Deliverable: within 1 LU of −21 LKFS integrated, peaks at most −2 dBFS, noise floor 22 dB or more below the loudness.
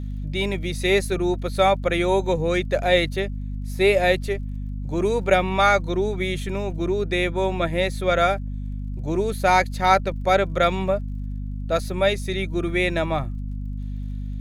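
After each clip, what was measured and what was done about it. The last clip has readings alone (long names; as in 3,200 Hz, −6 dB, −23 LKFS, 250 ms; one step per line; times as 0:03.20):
crackle rate 38 per second; mains hum 50 Hz; hum harmonics up to 250 Hz; level of the hum −27 dBFS; integrated loudness −23.0 LKFS; sample peak −4.0 dBFS; target loudness −21.0 LKFS
→ click removal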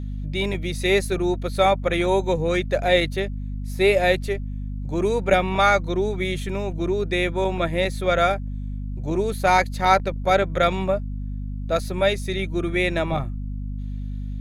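crackle rate 1.7 per second; mains hum 50 Hz; hum harmonics up to 250 Hz; level of the hum −27 dBFS
→ mains-hum notches 50/100/150/200/250 Hz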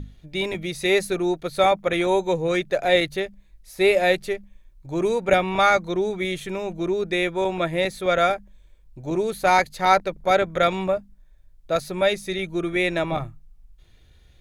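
mains hum none found; integrated loudness −22.5 LKFS; sample peak −4.5 dBFS; target loudness −21.0 LKFS
→ level +1.5 dB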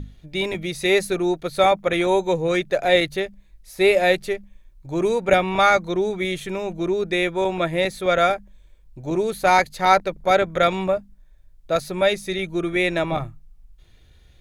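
integrated loudness −21.0 LKFS; sample peak −3.0 dBFS; background noise floor −52 dBFS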